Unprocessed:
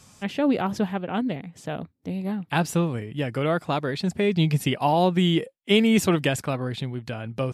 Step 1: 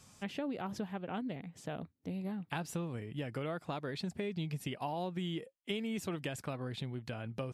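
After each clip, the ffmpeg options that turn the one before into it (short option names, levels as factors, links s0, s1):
-af "acompressor=threshold=0.0398:ratio=5,volume=0.422"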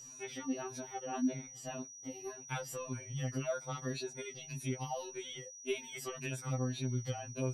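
-af "afftfilt=real='re*pow(10,10/40*sin(2*PI*(1.5*log(max(b,1)*sr/1024/100)/log(2)-(-1.8)*(pts-256)/sr)))':imag='im*pow(10,10/40*sin(2*PI*(1.5*log(max(b,1)*sr/1024/100)/log(2)-(-1.8)*(pts-256)/sr)))':win_size=1024:overlap=0.75,aeval=exprs='val(0)+0.00355*sin(2*PI*5800*n/s)':c=same,afftfilt=real='re*2.45*eq(mod(b,6),0)':imag='im*2.45*eq(mod(b,6),0)':win_size=2048:overlap=0.75,volume=1.12"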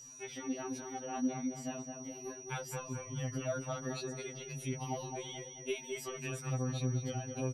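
-filter_complex "[0:a]asplit=2[s0][s1];[s1]adelay=215,lowpass=f=1500:p=1,volume=0.631,asplit=2[s2][s3];[s3]adelay=215,lowpass=f=1500:p=1,volume=0.45,asplit=2[s4][s5];[s5]adelay=215,lowpass=f=1500:p=1,volume=0.45,asplit=2[s6][s7];[s7]adelay=215,lowpass=f=1500:p=1,volume=0.45,asplit=2[s8][s9];[s9]adelay=215,lowpass=f=1500:p=1,volume=0.45,asplit=2[s10][s11];[s11]adelay=215,lowpass=f=1500:p=1,volume=0.45[s12];[s0][s2][s4][s6][s8][s10][s12]amix=inputs=7:normalize=0,volume=0.891"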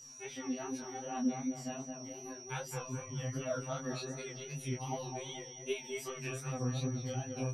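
-af "flanger=delay=19:depth=6:speed=2.6,volume=1.41"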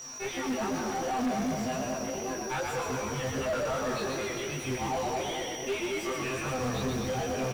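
-filter_complex "[0:a]acrusher=bits=4:mode=log:mix=0:aa=0.000001,asplit=7[s0][s1][s2][s3][s4][s5][s6];[s1]adelay=127,afreqshift=-47,volume=0.562[s7];[s2]adelay=254,afreqshift=-94,volume=0.288[s8];[s3]adelay=381,afreqshift=-141,volume=0.146[s9];[s4]adelay=508,afreqshift=-188,volume=0.075[s10];[s5]adelay=635,afreqshift=-235,volume=0.038[s11];[s6]adelay=762,afreqshift=-282,volume=0.0195[s12];[s0][s7][s8][s9][s10][s11][s12]amix=inputs=7:normalize=0,asplit=2[s13][s14];[s14]highpass=f=720:p=1,volume=39.8,asoftclip=type=tanh:threshold=0.0794[s15];[s13][s15]amix=inputs=2:normalize=0,lowpass=f=1400:p=1,volume=0.501"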